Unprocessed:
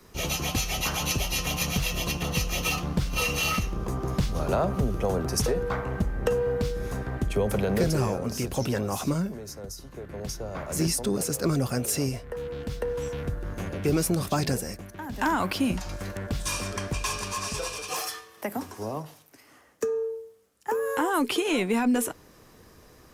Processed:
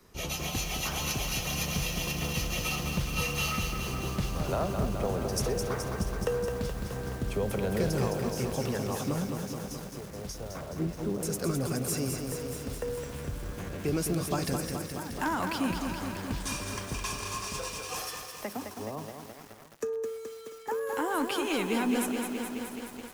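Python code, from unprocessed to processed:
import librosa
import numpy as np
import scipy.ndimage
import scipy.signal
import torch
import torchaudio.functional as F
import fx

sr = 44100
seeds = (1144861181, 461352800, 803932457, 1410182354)

y = fx.lowpass(x, sr, hz=1200.0, slope=12, at=(10.61, 11.23))
y = y + 10.0 ** (-19.5 / 20.0) * np.pad(y, (int(692 * sr / 1000.0), 0))[:len(y)]
y = fx.echo_crushed(y, sr, ms=212, feedback_pct=80, bits=7, wet_db=-5)
y = F.gain(torch.from_numpy(y), -5.5).numpy()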